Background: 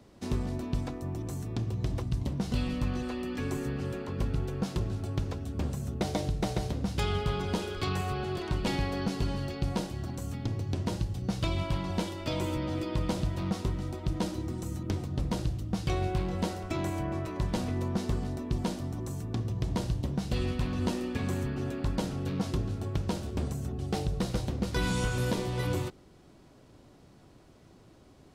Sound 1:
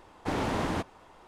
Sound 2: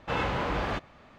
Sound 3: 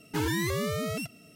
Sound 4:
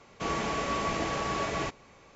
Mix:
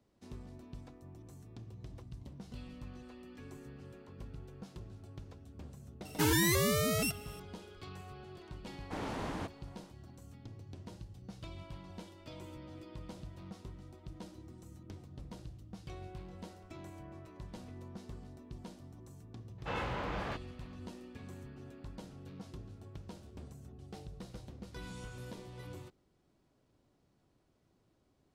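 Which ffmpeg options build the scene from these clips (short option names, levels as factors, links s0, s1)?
-filter_complex "[0:a]volume=0.141[s0];[3:a]highshelf=f=5300:g=8.5,atrim=end=1.35,asetpts=PTS-STARTPTS,volume=0.944,afade=t=in:d=0.004:c=hsin,afade=t=out:st=1.346:d=0.004:c=hsin,adelay=6050[s1];[1:a]atrim=end=1.27,asetpts=PTS-STARTPTS,volume=0.335,afade=t=in:d=0.004:c=hsin,afade=t=out:st=1.266:d=0.004:c=hsin,adelay=8650[s2];[2:a]atrim=end=1.18,asetpts=PTS-STARTPTS,volume=0.376,afade=t=in:d=0.004:c=hsin,afade=t=out:st=1.176:d=0.004:c=hsin,adelay=19580[s3];[s0][s1][s2][s3]amix=inputs=4:normalize=0"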